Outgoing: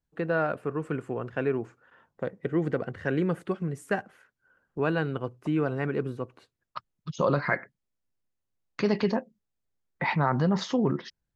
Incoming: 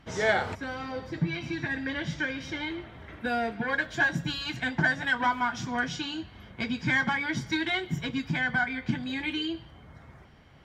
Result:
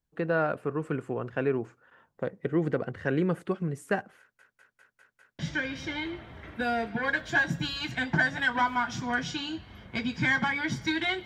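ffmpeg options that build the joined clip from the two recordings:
-filter_complex "[0:a]apad=whole_dur=11.25,atrim=end=11.25,asplit=6[a][b][c][d][e][f];[a]atrim=end=4.392[g];[b]atrim=start=4.188:end=4.392[h];[c]atrim=start=4.188:end=4.392[i];[d]atrim=start=4.188:end=4.392[j];[e]atrim=start=4.188:end=4.392[k];[f]atrim=start=4.188:end=4.392[l];[1:a]atrim=start=2.038:end=7.9[m];[g][h]acrossfade=d=0.004:c1=hsin:c2=hsin[n];[n][i]acrossfade=d=0.004:c1=hsin:c2=hsin[o];[o][j]acrossfade=d=0.004:c1=hsin:c2=hsin[p];[p][k]acrossfade=d=0.004:c1=hsin:c2=hsin[q];[q][l]acrossfade=d=0.004:c1=hsin:c2=hsin[r];[r][m]acrossfade=d=0.004:c1=hsin:c2=hsin"

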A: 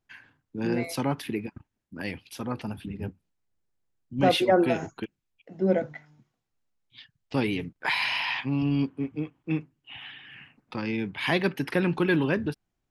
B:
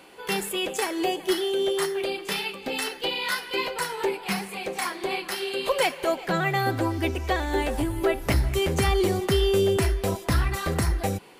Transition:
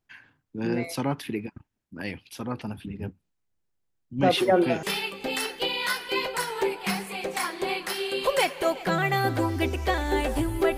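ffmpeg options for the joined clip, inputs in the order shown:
-filter_complex "[1:a]asplit=2[a][b];[0:a]apad=whole_dur=10.77,atrim=end=10.77,atrim=end=4.832[c];[b]atrim=start=2.248:end=8.19[d];[a]atrim=start=1.79:end=2.25,asetpts=PTS-STARTPTS,volume=-9dB,afade=t=in:d=0.004:c=hsin,afade=t=out:st=0.456:d=0.004:c=hsin,adelay=192717S[e];[c][d]acrossfade=d=0.004:c1=hsin:c2=hsin[f];[f][e]amix=inputs=2:normalize=0"

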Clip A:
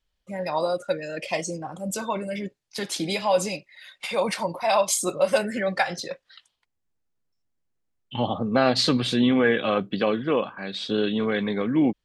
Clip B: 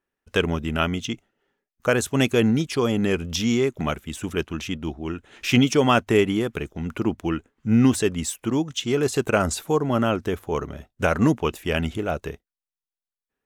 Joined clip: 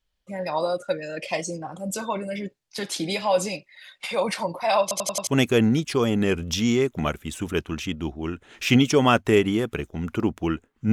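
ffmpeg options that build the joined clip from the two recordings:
-filter_complex "[0:a]apad=whole_dur=10.92,atrim=end=10.92,asplit=5[a][b][c][d][e];[a]atrim=end=4.912[f];[b]atrim=start=4.818:end=4.912[g];[c]atrim=start=4.818:end=4.912[h];[d]atrim=start=4.818:end=4.912[i];[e]atrim=start=4.818:end=4.912[j];[1:a]atrim=start=2.088:end=7.74[k];[f][g]acrossfade=d=0.004:c1=hsin:c2=hsin[l];[l][h]acrossfade=d=0.004:c1=hsin:c2=hsin[m];[m][i]acrossfade=d=0.004:c1=hsin:c2=hsin[n];[n][j]acrossfade=d=0.004:c1=hsin:c2=hsin[o];[o][k]acrossfade=d=0.004:c1=hsin:c2=hsin"

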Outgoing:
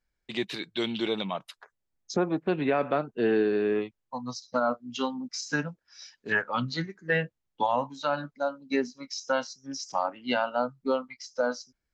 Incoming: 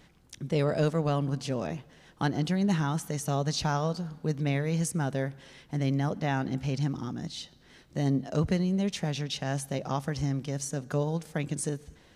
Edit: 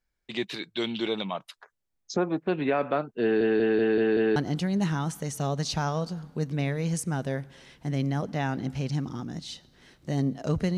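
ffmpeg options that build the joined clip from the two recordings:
-filter_complex "[0:a]apad=whole_dur=10.77,atrim=end=10.77,asplit=6[a][b][c][d][e][f];[a]atrim=end=3.412[g];[b]atrim=start=3.218:end=3.412[h];[c]atrim=start=3.218:end=3.412[i];[d]atrim=start=3.218:end=3.412[j];[e]atrim=start=3.218:end=3.412[k];[f]atrim=start=3.218:end=3.412[l];[1:a]atrim=start=2.238:end=8.65[m];[g][h]acrossfade=d=0.004:c1=hsin:c2=hsin[n];[n][i]acrossfade=d=0.004:c1=hsin:c2=hsin[o];[o][j]acrossfade=d=0.004:c1=hsin:c2=hsin[p];[p][k]acrossfade=d=0.004:c1=hsin:c2=hsin[q];[q][l]acrossfade=d=0.004:c1=hsin:c2=hsin[r];[r][m]acrossfade=d=0.004:c1=hsin:c2=hsin"

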